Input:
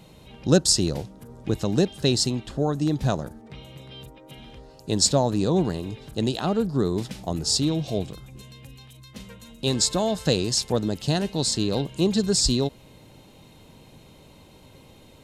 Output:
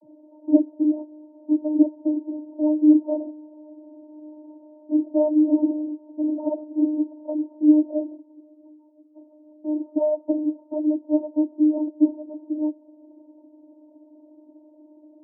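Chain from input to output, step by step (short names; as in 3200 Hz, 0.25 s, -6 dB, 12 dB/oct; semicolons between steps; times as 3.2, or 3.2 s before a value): in parallel at -4 dB: soft clip -13.5 dBFS, distortion -17 dB; on the sum: steep low-pass 830 Hz 96 dB/oct; vocoder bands 32, saw 304 Hz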